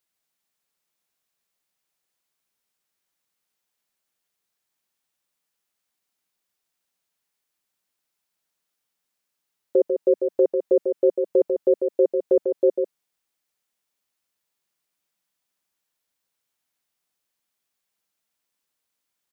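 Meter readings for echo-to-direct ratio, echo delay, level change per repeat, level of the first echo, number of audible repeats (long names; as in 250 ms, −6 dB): −6.0 dB, 146 ms, repeats not evenly spaced, −6.0 dB, 1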